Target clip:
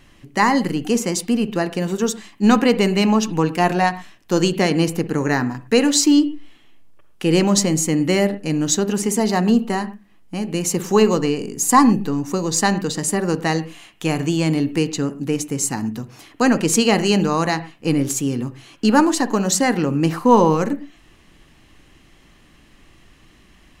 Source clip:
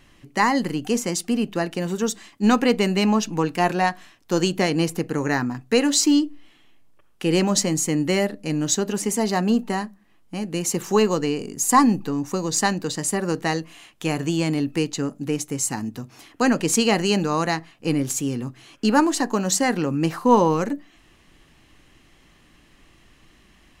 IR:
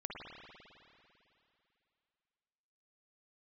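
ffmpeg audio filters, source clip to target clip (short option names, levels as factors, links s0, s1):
-filter_complex "[0:a]asplit=2[s0][s1];[1:a]atrim=start_sample=2205,atrim=end_sample=6174,lowshelf=f=490:g=7.5[s2];[s1][s2]afir=irnorm=-1:irlink=0,volume=0.335[s3];[s0][s3]amix=inputs=2:normalize=0,volume=1.12"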